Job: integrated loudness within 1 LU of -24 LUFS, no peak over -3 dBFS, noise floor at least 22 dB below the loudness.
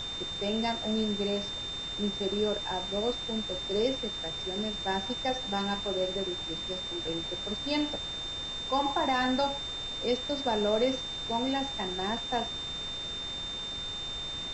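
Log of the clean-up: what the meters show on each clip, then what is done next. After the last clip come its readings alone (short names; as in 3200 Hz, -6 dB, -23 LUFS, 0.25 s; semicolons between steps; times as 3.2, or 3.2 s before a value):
steady tone 3600 Hz; tone level -35 dBFS; noise floor -37 dBFS; noise floor target -53 dBFS; loudness -31.0 LUFS; peak -15.5 dBFS; loudness target -24.0 LUFS
-> notch 3600 Hz, Q 30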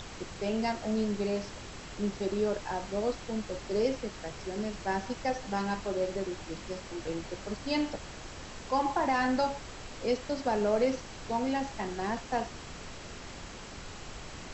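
steady tone none; noise floor -45 dBFS; noise floor target -55 dBFS
-> noise print and reduce 10 dB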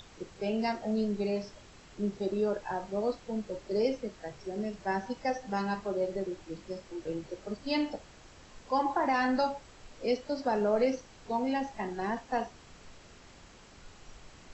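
noise floor -55 dBFS; loudness -33.0 LUFS; peak -16.5 dBFS; loudness target -24.0 LUFS
-> gain +9 dB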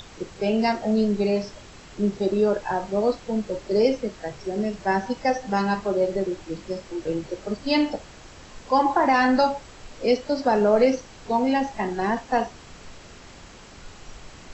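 loudness -24.0 LUFS; peak -7.5 dBFS; noise floor -46 dBFS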